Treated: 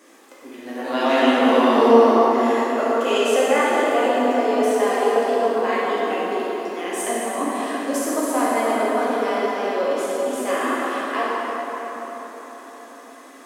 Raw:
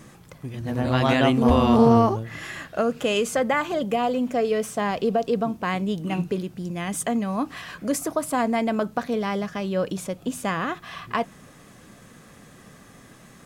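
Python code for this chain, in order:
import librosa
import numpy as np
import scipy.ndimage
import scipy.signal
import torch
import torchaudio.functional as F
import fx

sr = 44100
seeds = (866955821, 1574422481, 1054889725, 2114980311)

y = scipy.signal.sosfilt(scipy.signal.ellip(4, 1.0, 40, 260.0, 'highpass', fs=sr, output='sos'), x)
y = fx.rev_plate(y, sr, seeds[0], rt60_s=4.8, hf_ratio=0.55, predelay_ms=0, drr_db=-8.5)
y = y * 10.0 ** (-3.0 / 20.0)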